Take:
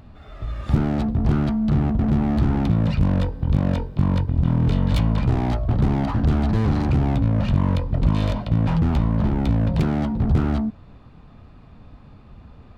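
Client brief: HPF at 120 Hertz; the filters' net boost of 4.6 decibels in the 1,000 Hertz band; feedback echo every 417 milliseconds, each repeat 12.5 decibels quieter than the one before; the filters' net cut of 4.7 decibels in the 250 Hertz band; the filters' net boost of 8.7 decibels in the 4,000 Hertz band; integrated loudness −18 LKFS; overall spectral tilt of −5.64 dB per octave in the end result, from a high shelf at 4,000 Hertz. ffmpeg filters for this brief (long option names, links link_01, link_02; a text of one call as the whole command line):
ffmpeg -i in.wav -af "highpass=120,equalizer=frequency=250:width_type=o:gain=-6,equalizer=frequency=1000:width_type=o:gain=5.5,highshelf=frequency=4000:gain=5.5,equalizer=frequency=4000:width_type=o:gain=7.5,aecho=1:1:417|834|1251:0.237|0.0569|0.0137,volume=7dB" out.wav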